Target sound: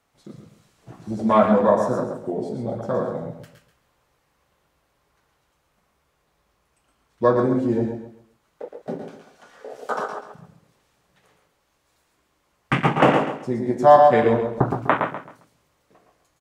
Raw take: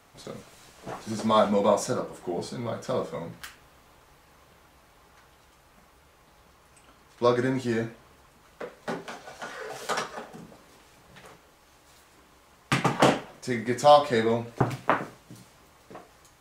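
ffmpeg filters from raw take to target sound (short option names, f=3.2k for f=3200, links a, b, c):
-filter_complex "[0:a]asplit=2[a][b];[b]aecho=0:1:115:0.473[c];[a][c]amix=inputs=2:normalize=0,afwtdn=0.0355,asplit=2[d][e];[e]aecho=0:1:134|268|402:0.355|0.0923|0.024[f];[d][f]amix=inputs=2:normalize=0,volume=4.5dB"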